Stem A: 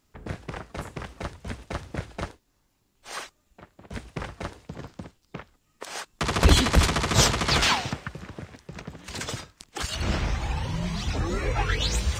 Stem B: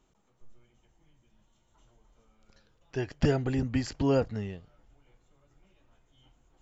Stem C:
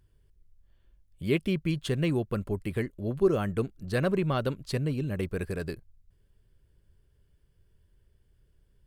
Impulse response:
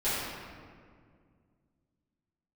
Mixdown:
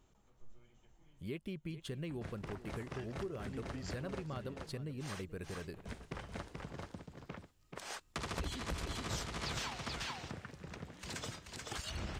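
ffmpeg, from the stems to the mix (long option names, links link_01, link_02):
-filter_complex "[0:a]adelay=1950,volume=-9dB,asplit=2[link_01][link_02];[link_02]volume=-5dB[link_03];[1:a]acompressor=threshold=-30dB:ratio=6,volume=-1dB,asplit=2[link_04][link_05];[link_05]volume=-18.5dB[link_06];[2:a]volume=-10.5dB,asplit=3[link_07][link_08][link_09];[link_08]volume=-18.5dB[link_10];[link_09]apad=whole_len=291605[link_11];[link_04][link_11]sidechaincompress=threshold=-44dB:ratio=8:attack=16:release=467[link_12];[link_03][link_06][link_10]amix=inputs=3:normalize=0,aecho=0:1:432:1[link_13];[link_01][link_12][link_07][link_13]amix=inputs=4:normalize=0,acompressor=threshold=-39dB:ratio=4"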